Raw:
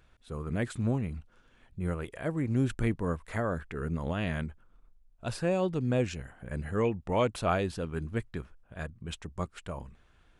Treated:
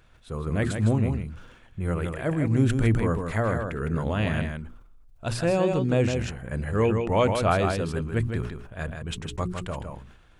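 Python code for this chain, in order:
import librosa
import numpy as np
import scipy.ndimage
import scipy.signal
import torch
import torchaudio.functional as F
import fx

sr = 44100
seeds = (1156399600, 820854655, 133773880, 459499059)

p1 = fx.peak_eq(x, sr, hz=110.0, db=5.5, octaves=0.24)
p2 = fx.hum_notches(p1, sr, base_hz=60, count=7)
p3 = p2 + fx.echo_single(p2, sr, ms=158, db=-6.5, dry=0)
p4 = fx.sustainer(p3, sr, db_per_s=63.0)
y = p4 * librosa.db_to_amplitude(5.0)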